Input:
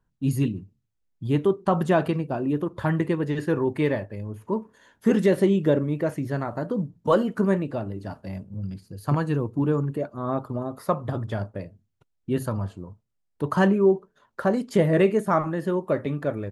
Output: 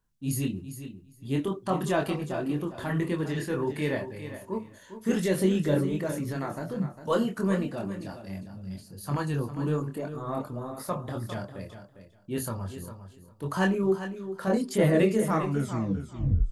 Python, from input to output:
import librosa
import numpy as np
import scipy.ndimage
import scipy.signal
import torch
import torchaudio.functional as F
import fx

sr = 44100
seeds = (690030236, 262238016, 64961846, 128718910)

p1 = fx.tape_stop_end(x, sr, length_s=1.14)
p2 = fx.high_shelf(p1, sr, hz=3100.0, db=11.5)
p3 = fx.transient(p2, sr, attack_db=-4, sustain_db=2)
p4 = fx.chorus_voices(p3, sr, voices=6, hz=1.4, base_ms=24, depth_ms=3.0, mix_pct=40)
p5 = p4 + fx.echo_feedback(p4, sr, ms=403, feedback_pct=16, wet_db=-11.0, dry=0)
y = p5 * 10.0 ** (-2.0 / 20.0)